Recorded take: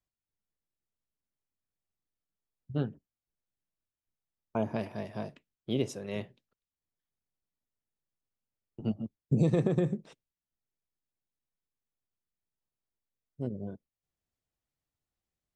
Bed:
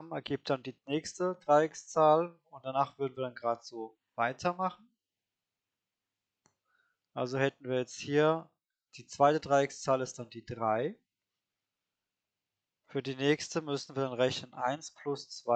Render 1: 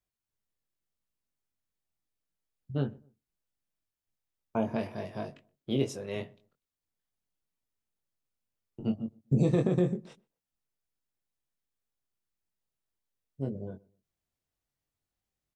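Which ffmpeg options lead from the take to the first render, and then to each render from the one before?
-filter_complex "[0:a]asplit=2[a][b];[b]adelay=22,volume=-5.5dB[c];[a][c]amix=inputs=2:normalize=0,asplit=2[d][e];[e]adelay=124,lowpass=f=1.1k:p=1,volume=-23.5dB,asplit=2[f][g];[g]adelay=124,lowpass=f=1.1k:p=1,volume=0.31[h];[d][f][h]amix=inputs=3:normalize=0"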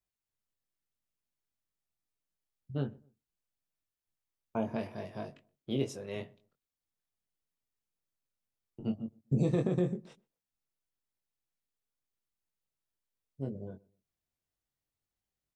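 -af "volume=-3.5dB"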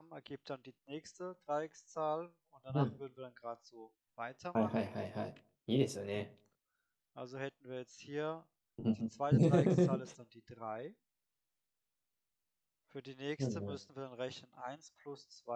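-filter_complex "[1:a]volume=-13dB[a];[0:a][a]amix=inputs=2:normalize=0"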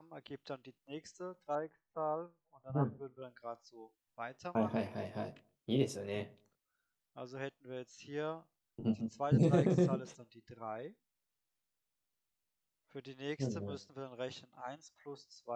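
-filter_complex "[0:a]asettb=1/sr,asplit=3[a][b][c];[a]atrim=end=1.554[d];[b]atrim=start=1.55:end=3.22,asetpts=PTS-STARTPTS,afade=t=in:d=0.004:c=qsin,afade=t=out:st=1.666:d=0.004:c=qsin,lowpass=f=1.7k:w=0.5412,lowpass=f=1.7k:w=1.3066[e];[c]atrim=start=3.216[f];[d][e]acrossfade=d=0.004:c1=hsin:c2=qsin[g];[g][f]acrossfade=d=0.004:c1=qsin:c2=hsin"

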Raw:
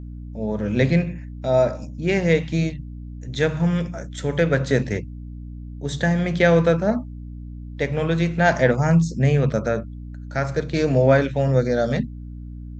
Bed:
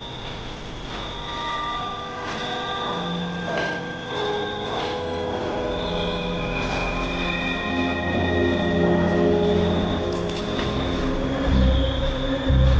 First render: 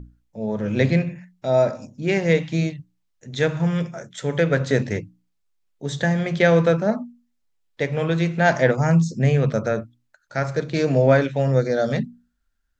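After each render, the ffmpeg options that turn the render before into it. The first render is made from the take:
-af "bandreject=f=60:t=h:w=6,bandreject=f=120:t=h:w=6,bandreject=f=180:t=h:w=6,bandreject=f=240:t=h:w=6,bandreject=f=300:t=h:w=6"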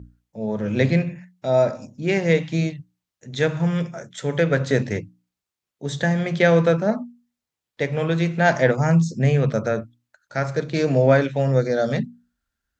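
-af "highpass=58"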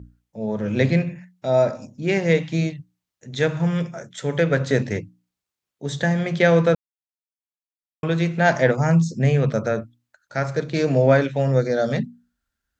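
-filter_complex "[0:a]asplit=3[a][b][c];[a]atrim=end=6.75,asetpts=PTS-STARTPTS,afade=t=out:st=6.746:d=0.004:c=hsin[d];[b]atrim=start=6.75:end=8.03,asetpts=PTS-STARTPTS,volume=0[e];[c]atrim=start=8.03,asetpts=PTS-STARTPTS,afade=t=in:d=0.004:c=hsin[f];[d][e][f]concat=n=3:v=0:a=1"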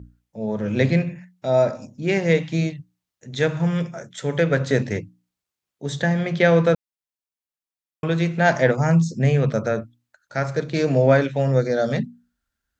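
-filter_complex "[0:a]asettb=1/sr,asplit=3[a][b][c];[a]atrim=end=6.024[d];[b]atrim=start=6.02:end=6.65,asetpts=PTS-STARTPTS,afade=t=in:d=0.004:c=qsin,afade=t=out:st=0.626:d=0.004:c=qsin,lowpass=6.1k[e];[c]atrim=start=6.646[f];[d][e]acrossfade=d=0.004:c1=hsin:c2=qsin[g];[g][f]acrossfade=d=0.004:c1=qsin:c2=hsin"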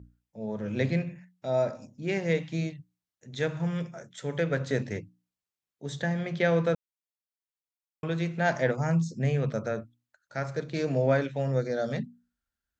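-af "volume=-8.5dB"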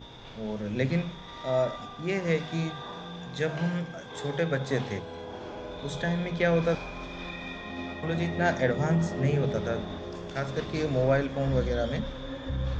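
-filter_complex "[1:a]volume=-13.5dB[a];[0:a][a]amix=inputs=2:normalize=0"

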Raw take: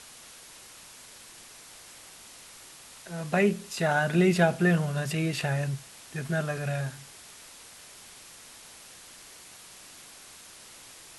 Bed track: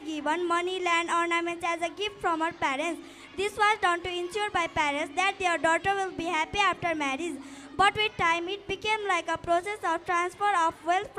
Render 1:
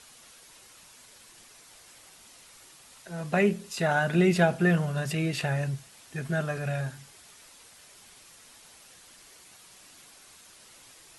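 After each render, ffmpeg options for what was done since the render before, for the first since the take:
-af "afftdn=nr=6:nf=-50"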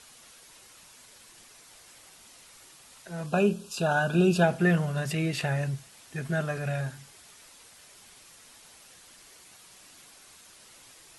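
-filter_complex "[0:a]asettb=1/sr,asplit=3[a][b][c];[a]atrim=end=3.264[d];[b]atrim=start=3.26:end=4.44,asetpts=PTS-STARTPTS,afade=t=in:d=0.004:c=qsin,afade=t=out:st=1.176:d=0.004:c=qsin,asuperstop=centerf=2000:order=12:qfactor=2.8[e];[c]atrim=start=4.436[f];[d][e]acrossfade=d=0.004:c1=hsin:c2=qsin[g];[g][f]acrossfade=d=0.004:c1=qsin:c2=hsin"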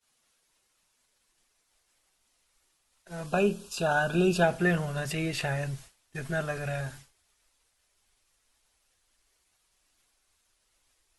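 -af "agate=range=-33dB:threshold=-40dB:ratio=3:detection=peak,asubboost=boost=8.5:cutoff=52"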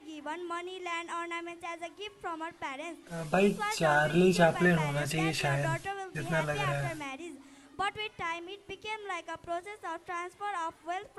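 -filter_complex "[1:a]volume=-10.5dB[a];[0:a][a]amix=inputs=2:normalize=0"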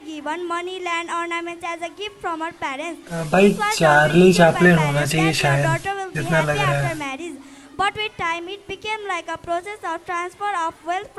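-af "volume=12dB,alimiter=limit=-2dB:level=0:latency=1"

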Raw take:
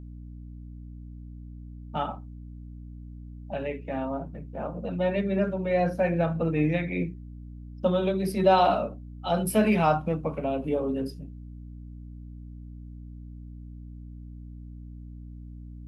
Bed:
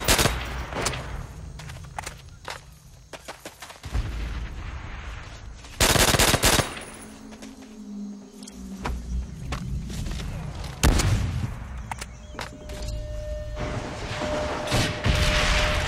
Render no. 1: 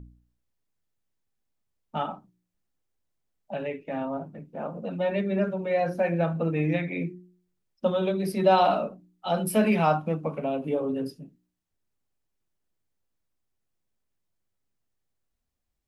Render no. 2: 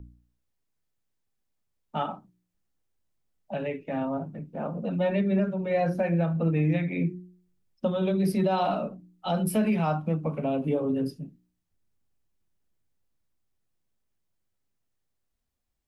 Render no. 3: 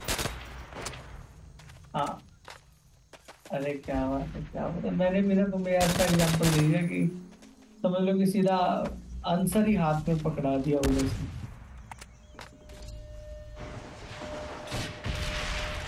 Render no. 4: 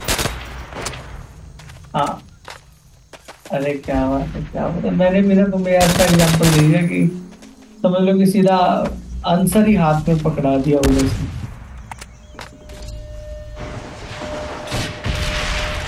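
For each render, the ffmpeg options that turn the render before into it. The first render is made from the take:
-af "bandreject=f=60:t=h:w=4,bandreject=f=120:t=h:w=4,bandreject=f=180:t=h:w=4,bandreject=f=240:t=h:w=4,bandreject=f=300:t=h:w=4,bandreject=f=360:t=h:w=4"
-filter_complex "[0:a]acrossover=split=240|1200[a][b][c];[a]dynaudnorm=f=670:g=11:m=7.5dB[d];[d][b][c]amix=inputs=3:normalize=0,alimiter=limit=-16.5dB:level=0:latency=1:release=484"
-filter_complex "[1:a]volume=-11dB[a];[0:a][a]amix=inputs=2:normalize=0"
-af "volume=11.5dB,alimiter=limit=-1dB:level=0:latency=1"

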